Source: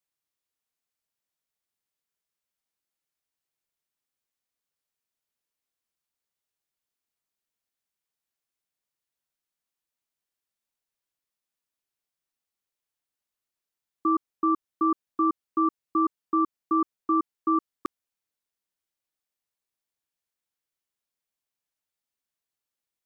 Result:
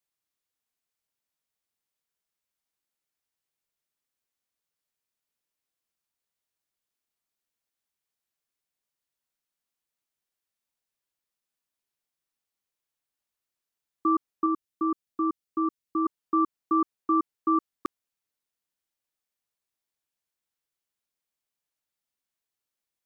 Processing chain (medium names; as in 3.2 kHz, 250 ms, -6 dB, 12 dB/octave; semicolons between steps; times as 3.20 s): 14.46–16.06 s: peaking EQ 970 Hz -5.5 dB 2.3 oct